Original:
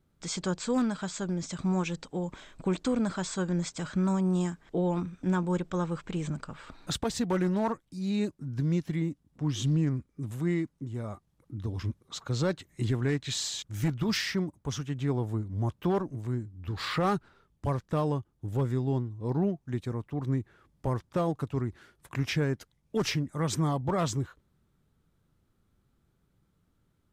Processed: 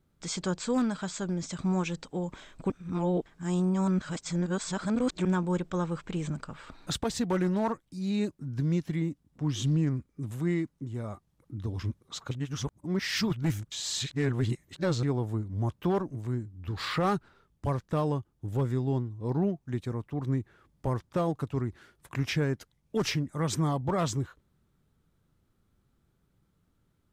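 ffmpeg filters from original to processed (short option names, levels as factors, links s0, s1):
-filter_complex "[0:a]asplit=5[s0][s1][s2][s3][s4];[s0]atrim=end=2.702[s5];[s1]atrim=start=2.698:end=5.252,asetpts=PTS-STARTPTS,areverse[s6];[s2]atrim=start=5.248:end=12.312[s7];[s3]atrim=start=12.308:end=15.032,asetpts=PTS-STARTPTS,areverse[s8];[s4]atrim=start=15.028[s9];[s5][s6]acrossfade=d=0.004:c1=hsin:c2=hsin[s10];[s10][s7]acrossfade=d=0.004:c1=hsin:c2=hsin[s11];[s11][s8]acrossfade=d=0.004:c1=hsin:c2=hsin[s12];[s12][s9]acrossfade=d=0.004:c1=hsin:c2=hsin"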